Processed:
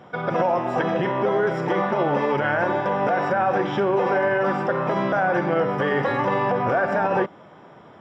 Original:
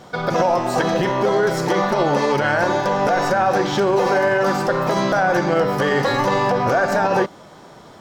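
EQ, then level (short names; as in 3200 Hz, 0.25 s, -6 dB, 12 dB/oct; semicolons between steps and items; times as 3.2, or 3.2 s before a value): polynomial smoothing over 25 samples; HPF 79 Hz; -3.5 dB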